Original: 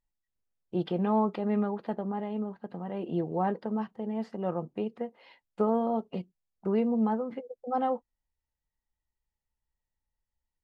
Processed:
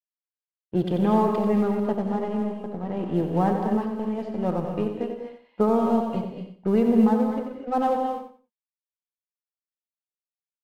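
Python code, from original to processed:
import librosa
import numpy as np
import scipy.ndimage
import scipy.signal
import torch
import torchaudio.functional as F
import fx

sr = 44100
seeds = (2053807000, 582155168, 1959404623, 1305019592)

y = fx.law_mismatch(x, sr, coded='A')
y = fx.env_lowpass(y, sr, base_hz=2800.0, full_db=-27.0)
y = fx.low_shelf(y, sr, hz=150.0, db=9.0)
y = fx.echo_feedback(y, sr, ms=90, feedback_pct=22, wet_db=-8)
y = fx.rev_gated(y, sr, seeds[0], gate_ms=270, shape='rising', drr_db=5.0)
y = y * librosa.db_to_amplitude(4.5)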